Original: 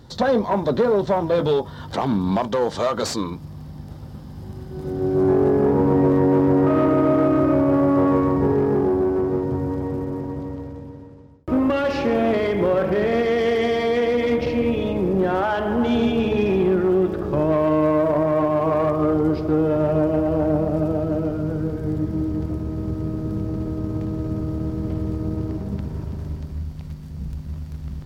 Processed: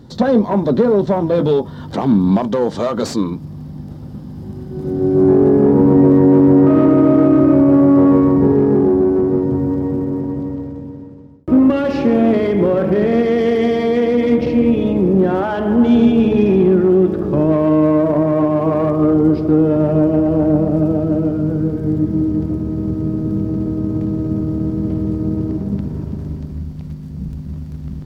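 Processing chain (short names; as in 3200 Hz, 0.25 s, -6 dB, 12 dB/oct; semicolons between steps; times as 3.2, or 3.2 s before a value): bell 230 Hz +10.5 dB 2 oct; gain -1 dB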